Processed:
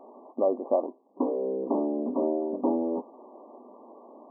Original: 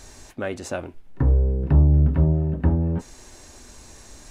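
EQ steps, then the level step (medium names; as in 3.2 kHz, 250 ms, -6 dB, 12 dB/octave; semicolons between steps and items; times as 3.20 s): brick-wall FIR band-pass 210–1200 Hz; peaking EQ 610 Hz +6.5 dB 1.3 oct; 0.0 dB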